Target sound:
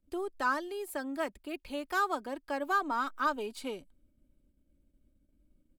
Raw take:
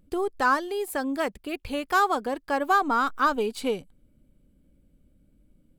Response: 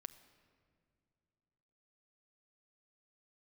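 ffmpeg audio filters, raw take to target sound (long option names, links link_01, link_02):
-filter_complex "[0:a]agate=range=-12dB:threshold=-60dB:ratio=16:detection=peak,aecho=1:1:3.2:0.42,acrossover=split=270|1800[link_01][link_02][link_03];[link_01]asoftclip=type=tanh:threshold=-38.5dB[link_04];[link_04][link_02][link_03]amix=inputs=3:normalize=0,volume=-8.5dB"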